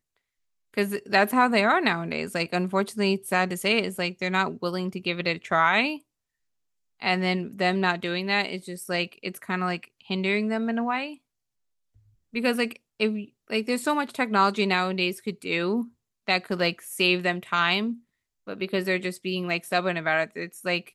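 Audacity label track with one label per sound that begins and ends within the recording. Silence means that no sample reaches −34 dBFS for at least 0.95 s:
7.020000	11.140000	sound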